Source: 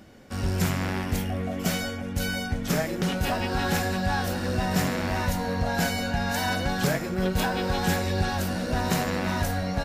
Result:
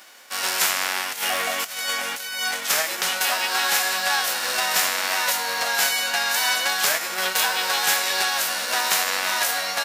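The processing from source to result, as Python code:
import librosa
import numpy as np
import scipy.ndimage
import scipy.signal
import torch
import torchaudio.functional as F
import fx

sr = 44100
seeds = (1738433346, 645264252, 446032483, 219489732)

y = fx.envelope_flatten(x, sr, power=0.6)
y = scipy.signal.sosfilt(scipy.signal.butter(2, 880.0, 'highpass', fs=sr, output='sos'), y)
y = fx.over_compress(y, sr, threshold_db=-34.0, ratio=-0.5, at=(1.11, 2.52), fade=0.02)
y = F.gain(torch.from_numpy(y), 6.5).numpy()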